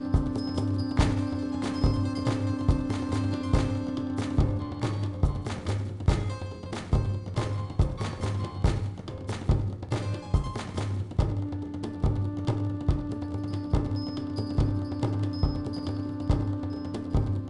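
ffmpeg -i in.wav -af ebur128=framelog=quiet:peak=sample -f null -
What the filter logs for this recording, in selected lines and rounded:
Integrated loudness:
  I:         -29.8 LUFS
  Threshold: -39.8 LUFS
Loudness range:
  LRA:         2.6 LU
  Threshold: -49.9 LUFS
  LRA low:   -30.8 LUFS
  LRA high:  -28.2 LUFS
Sample peak:
  Peak:      -11.0 dBFS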